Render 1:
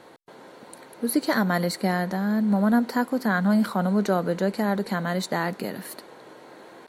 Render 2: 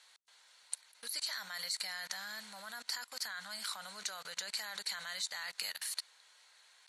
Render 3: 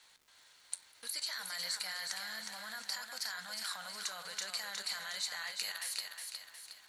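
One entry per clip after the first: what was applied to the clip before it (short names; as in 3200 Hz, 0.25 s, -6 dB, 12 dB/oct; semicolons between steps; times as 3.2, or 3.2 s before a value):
passive tone stack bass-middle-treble 10-0-10; level quantiser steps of 24 dB; weighting filter ITU-R 468; gain +1.5 dB
flange 0.39 Hz, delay 8.4 ms, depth 4.2 ms, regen +77%; crackle 510/s -61 dBFS; thinning echo 0.362 s, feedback 46%, high-pass 280 Hz, level -5 dB; gain +4 dB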